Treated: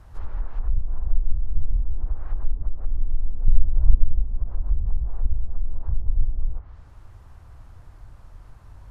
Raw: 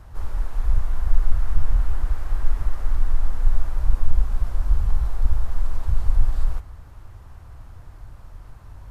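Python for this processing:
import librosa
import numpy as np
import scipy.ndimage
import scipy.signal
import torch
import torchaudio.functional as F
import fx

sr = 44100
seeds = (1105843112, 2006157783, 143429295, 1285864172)

y = fx.env_lowpass_down(x, sr, base_hz=360.0, full_db=-12.0)
y = fx.bass_treble(y, sr, bass_db=7, treble_db=0, at=(3.48, 4.04))
y = F.gain(torch.from_numpy(y), -3.5).numpy()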